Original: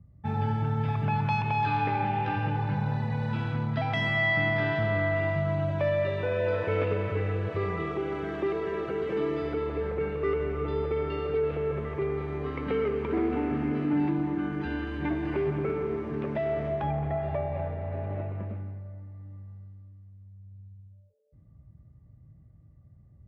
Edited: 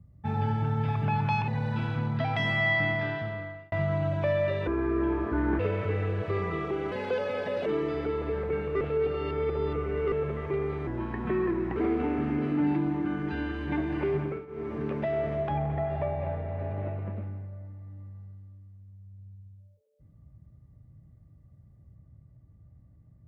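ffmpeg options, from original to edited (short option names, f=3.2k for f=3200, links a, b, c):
-filter_complex "[0:a]asplit=13[a][b][c][d][e][f][g][h][i][j][k][l][m];[a]atrim=end=1.482[n];[b]atrim=start=3.048:end=5.29,asetpts=PTS-STARTPTS,afade=t=out:st=1.242:d=1[o];[c]atrim=start=5.29:end=6.244,asetpts=PTS-STARTPTS,afade=t=in:d=0.004:c=hsin[p];[d]atrim=start=6.24:end=6.86,asetpts=PTS-STARTPTS,asetrate=29547,aresample=44100[q];[e]atrim=start=6.856:end=8.184[r];[f]atrim=start=8.18:end=9.14,asetpts=PTS-STARTPTS,asetrate=56889,aresample=44100[s];[g]atrim=start=9.136:end=10.292[t];[h]atrim=start=10.288:end=11.602,asetpts=PTS-STARTPTS,areverse[u];[i]atrim=start=11.598:end=12.354[v];[j]atrim=start=12.35:end=13.09,asetpts=PTS-STARTPTS,asetrate=36603,aresample=44100,atrim=end_sample=39318,asetpts=PTS-STARTPTS[w];[k]atrim=start=13.086:end=15.79,asetpts=PTS-STARTPTS,afade=t=out:st=2.444:d=0.26:silence=0.141254[x];[l]atrim=start=15.79:end=15.8,asetpts=PTS-STARTPTS,volume=-17dB[y];[m]atrim=start=15.8,asetpts=PTS-STARTPTS,afade=t=in:d=0.26:silence=0.141254[z];[o][p]concat=n=2:v=0:a=1[aa];[n][aa]acrossfade=d=0.004:c1=hsin:c2=hsin[ab];[ab][q]acrossfade=d=0.004:c1=hsin:c2=hsin[ac];[ac][r]acrossfade=d=0.004:c1=hsin:c2=hsin[ad];[ad][s]acrossfade=d=0.004:c1=hsin:c2=hsin[ae];[ae][t]acrossfade=d=0.004:c1=hsin:c2=hsin[af];[af][u]acrossfade=d=0.004:c1=hsin:c2=hsin[ag];[ag][v]acrossfade=d=0.004:c1=hsin:c2=hsin[ah];[ah][w]acrossfade=d=0.004:c1=hsin:c2=hsin[ai];[x][y][z]concat=n=3:v=0:a=1[aj];[ai][aj]acrossfade=d=0.004:c1=hsin:c2=hsin"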